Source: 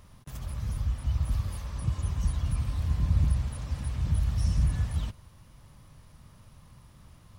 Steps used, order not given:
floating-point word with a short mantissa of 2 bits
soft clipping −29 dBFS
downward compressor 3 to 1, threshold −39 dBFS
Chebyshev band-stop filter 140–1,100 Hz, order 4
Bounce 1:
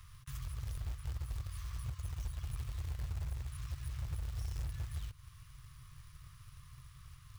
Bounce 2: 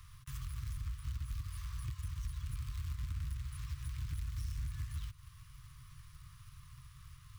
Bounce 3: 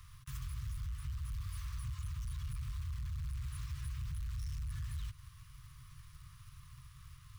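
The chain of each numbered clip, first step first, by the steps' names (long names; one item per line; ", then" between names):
downward compressor, then soft clipping, then Chebyshev band-stop filter, then floating-point word with a short mantissa
downward compressor, then floating-point word with a short mantissa, then Chebyshev band-stop filter, then soft clipping
soft clipping, then floating-point word with a short mantissa, then Chebyshev band-stop filter, then downward compressor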